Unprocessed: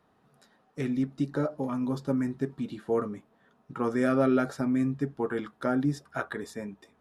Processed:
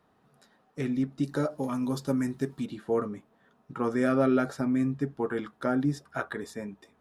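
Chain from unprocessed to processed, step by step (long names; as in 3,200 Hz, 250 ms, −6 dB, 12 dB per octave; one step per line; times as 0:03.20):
0:01.23–0:02.66: high-shelf EQ 3,900 Hz +12 dB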